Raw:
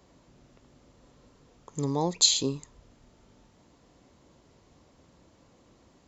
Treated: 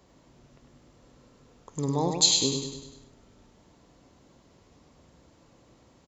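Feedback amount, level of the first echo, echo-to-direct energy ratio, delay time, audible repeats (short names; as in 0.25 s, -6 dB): 52%, -5.5 dB, -4.0 dB, 0.1 s, 6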